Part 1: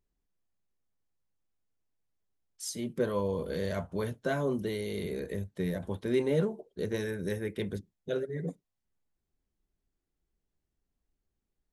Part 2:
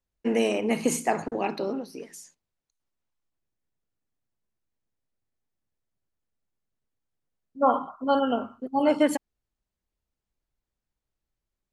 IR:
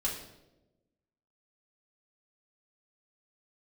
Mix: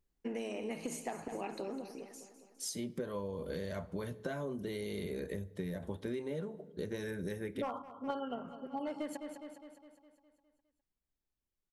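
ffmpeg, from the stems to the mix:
-filter_complex "[0:a]volume=-1.5dB,afade=type=out:start_time=7.53:duration=0.23:silence=0.281838,asplit=3[link_01][link_02][link_03];[link_02]volume=-19.5dB[link_04];[1:a]asoftclip=type=hard:threshold=-14.5dB,volume=0.5dB,asplit=2[link_05][link_06];[link_06]volume=-23.5dB[link_07];[link_03]apad=whole_len=516868[link_08];[link_05][link_08]sidechaingate=range=-10dB:threshold=-49dB:ratio=16:detection=peak[link_09];[2:a]atrim=start_sample=2205[link_10];[link_04][link_10]afir=irnorm=-1:irlink=0[link_11];[link_07]aecho=0:1:205|410|615|820|1025|1230|1435|1640:1|0.55|0.303|0.166|0.0915|0.0503|0.0277|0.0152[link_12];[link_01][link_09][link_11][link_12]amix=inputs=4:normalize=0,acompressor=threshold=-35dB:ratio=16"

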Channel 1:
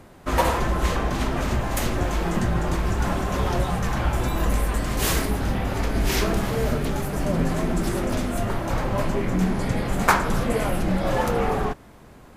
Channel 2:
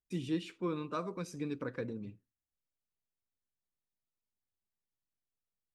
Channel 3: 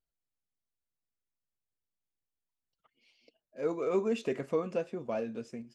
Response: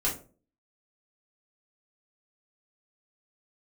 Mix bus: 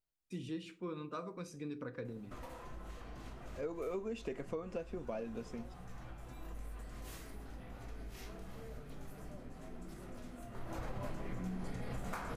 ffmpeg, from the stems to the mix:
-filter_complex "[0:a]acompressor=threshold=-32dB:ratio=6,adelay=2050,volume=-7dB,afade=type=in:start_time=10.5:duration=0.48:silence=0.237137,asplit=2[link_01][link_02];[link_02]volume=-8.5dB[link_03];[1:a]adelay=200,volume=-6dB,asplit=2[link_04][link_05];[link_05]volume=-16.5dB[link_06];[2:a]volume=-2.5dB,asplit=2[link_07][link_08];[link_08]apad=whole_len=635766[link_09];[link_01][link_09]sidechaincompress=threshold=-40dB:ratio=8:attack=16:release=1480[link_10];[3:a]atrim=start_sample=2205[link_11];[link_03][link_06]amix=inputs=2:normalize=0[link_12];[link_12][link_11]afir=irnorm=-1:irlink=0[link_13];[link_10][link_04][link_07][link_13]amix=inputs=4:normalize=0,acompressor=threshold=-37dB:ratio=5"

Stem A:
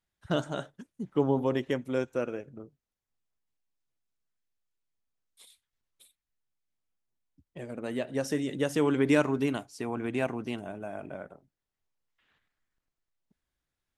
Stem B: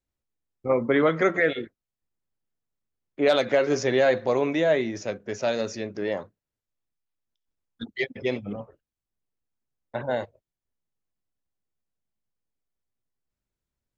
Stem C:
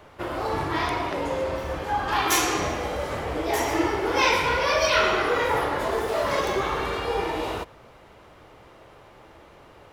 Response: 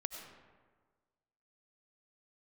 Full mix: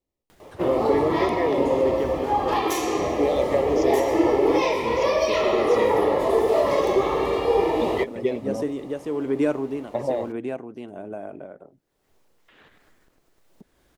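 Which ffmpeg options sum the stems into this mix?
-filter_complex "[0:a]acompressor=mode=upward:threshold=-29dB:ratio=2.5,asoftclip=type=tanh:threshold=-13dB,tremolo=f=1.2:d=0.48,adelay=300,volume=-6dB[link_01];[1:a]acompressor=threshold=-27dB:ratio=6,volume=-2dB[link_02];[2:a]acrusher=bits=8:mix=0:aa=0.5,adelay=400,volume=-2.5dB[link_03];[link_02][link_03]amix=inputs=2:normalize=0,asuperstop=centerf=1500:order=4:qfactor=3.8,alimiter=limit=-17.5dB:level=0:latency=1:release=461,volume=0dB[link_04];[link_01][link_04]amix=inputs=2:normalize=0,equalizer=frequency=420:width_type=o:width=2.1:gain=11"

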